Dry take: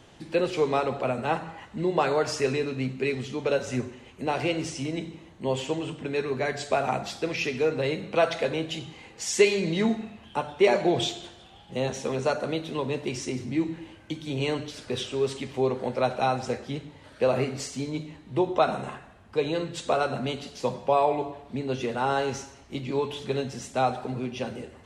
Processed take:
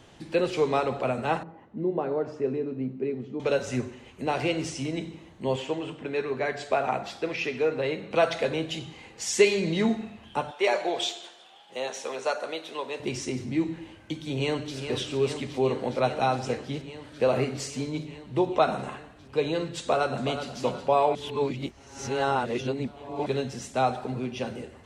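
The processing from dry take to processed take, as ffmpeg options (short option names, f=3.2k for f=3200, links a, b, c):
-filter_complex "[0:a]asettb=1/sr,asplit=3[a][b][c];[a]atrim=end=1.434[d];[b]atrim=start=1.43:end=3.4,asetpts=PTS-STARTPTS,afade=t=in:d=0.004:c=qsin,afade=t=out:st=1.966:d=0.004:c=qsin,bandpass=f=290:t=q:w=0.95[e];[c]atrim=start=3.396[f];[d][e]acrossfade=d=0.004:c1=hsin:c2=qsin[g];[g][f]acrossfade=d=0.004:c1=qsin:c2=hsin,asettb=1/sr,asplit=3[h][i][j];[h]atrim=end=5.564[k];[i]atrim=start=5.56:end=8.11,asetpts=PTS-STARTPTS,afade=t=in:d=0.004:c=qsin,afade=t=out:st=2.546:d=0.004:c=qsin,bass=f=250:g=-6,treble=f=4k:g=-8[l];[j]atrim=start=8.106[m];[k][l]acrossfade=d=0.004:c1=hsin:c2=qsin[n];[n][m]acrossfade=d=0.004:c1=qsin:c2=hsin,asettb=1/sr,asplit=3[o][p][q];[o]atrim=end=10.514[r];[p]atrim=start=10.51:end=13,asetpts=PTS-STARTPTS,afade=t=in:d=0.004:c=qsin,afade=t=out:st=2.486:d=0.004:c=qsin,highpass=540[s];[q]atrim=start=12.996[t];[r][s]acrossfade=d=0.004:c1=hsin:c2=qsin[u];[u][t]acrossfade=d=0.004:c1=qsin:c2=hsin,asplit=2[v][w];[w]afade=t=in:st=14.24:d=0.01,afade=t=out:st=14.76:d=0.01,aecho=0:1:410|820|1230|1640|2050|2460|2870|3280|3690|4100|4510|4920:0.398107|0.338391|0.287632|0.244488|0.207814|0.176642|0.150146|0.127624|0.10848|0.0922084|0.0783771|0.0666205[x];[v][x]amix=inputs=2:normalize=0,asplit=2[y][z];[z]afade=t=in:st=19.8:d=0.01,afade=t=out:st=20.51:d=0.01,aecho=0:1:370|740|1110|1480|1850:0.334965|0.150734|0.0678305|0.0305237|0.0137357[aa];[y][aa]amix=inputs=2:normalize=0,asplit=3[ab][ac][ad];[ab]atrim=end=21.152[ae];[ac]atrim=start=21.148:end=23.262,asetpts=PTS-STARTPTS,areverse[af];[ad]atrim=start=23.258[ag];[ae][af]acrossfade=d=0.004:c1=hsin:c2=hsin[ah];[ah][ag]acrossfade=d=0.004:c1=hsin:c2=hsin"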